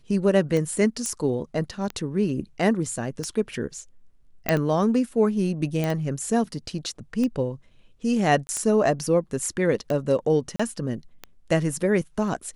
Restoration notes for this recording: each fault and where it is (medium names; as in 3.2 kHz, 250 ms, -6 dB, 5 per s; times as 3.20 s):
tick 45 rpm -16 dBFS
1.06 s: pop -15 dBFS
4.49 s: pop -5 dBFS
5.84 s: pop -13 dBFS
8.47–8.49 s: dropout 20 ms
10.56–10.60 s: dropout 35 ms